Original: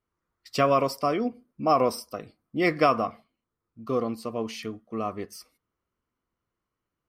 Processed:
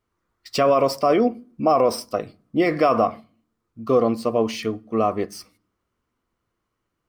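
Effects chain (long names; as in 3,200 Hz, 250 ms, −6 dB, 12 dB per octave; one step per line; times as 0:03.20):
running median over 3 samples
brickwall limiter −19.5 dBFS, peak gain reduction 9.5 dB
on a send at −23 dB: low-shelf EQ 320 Hz +9.5 dB + convolution reverb RT60 0.50 s, pre-delay 3 ms
on the sum: dynamic equaliser 580 Hz, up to +6 dB, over −40 dBFS, Q 1.1
level +7 dB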